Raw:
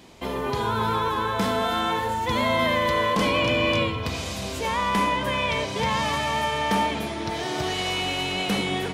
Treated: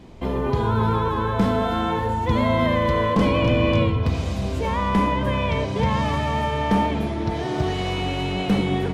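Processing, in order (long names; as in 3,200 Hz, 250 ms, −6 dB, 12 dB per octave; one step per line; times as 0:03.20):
spectral tilt −3 dB per octave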